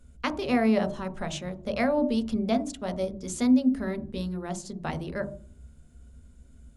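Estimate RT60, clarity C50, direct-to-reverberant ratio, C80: 0.45 s, 14.0 dB, 7.0 dB, 18.0 dB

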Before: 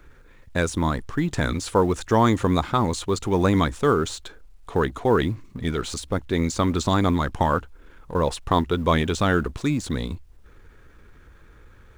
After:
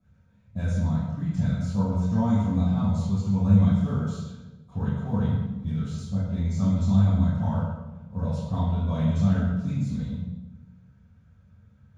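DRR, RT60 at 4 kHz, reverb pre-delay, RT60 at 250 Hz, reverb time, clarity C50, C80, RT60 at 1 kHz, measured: -12.0 dB, 0.80 s, 3 ms, 1.5 s, 1.1 s, -2.0 dB, 1.5 dB, 1.0 s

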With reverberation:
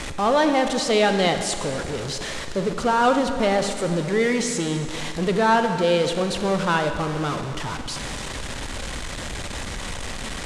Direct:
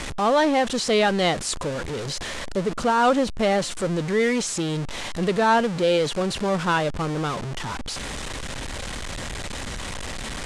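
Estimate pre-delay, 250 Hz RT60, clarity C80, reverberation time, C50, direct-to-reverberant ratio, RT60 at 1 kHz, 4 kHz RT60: 29 ms, 2.6 s, 8.5 dB, 2.4 s, 7.0 dB, 6.5 dB, 2.4 s, 2.2 s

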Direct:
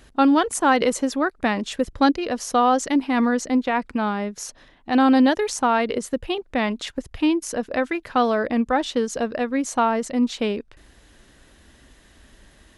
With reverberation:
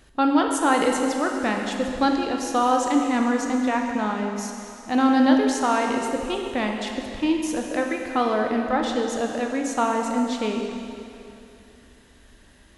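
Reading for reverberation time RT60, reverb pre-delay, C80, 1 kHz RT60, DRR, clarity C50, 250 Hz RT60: 2.8 s, 8 ms, 4.0 dB, 2.8 s, 1.5 dB, 3.0 dB, 2.8 s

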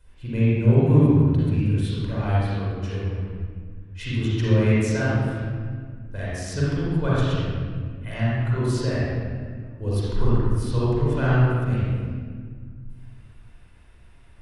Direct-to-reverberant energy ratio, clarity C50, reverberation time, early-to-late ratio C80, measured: -9.0 dB, -6.0 dB, 1.8 s, -2.5 dB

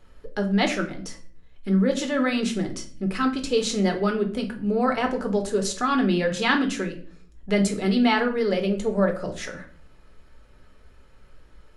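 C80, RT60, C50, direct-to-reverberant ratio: 16.0 dB, 0.40 s, 12.0 dB, 3.0 dB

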